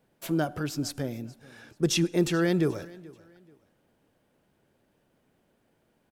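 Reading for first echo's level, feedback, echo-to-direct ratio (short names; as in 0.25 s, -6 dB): -22.0 dB, 30%, -21.5 dB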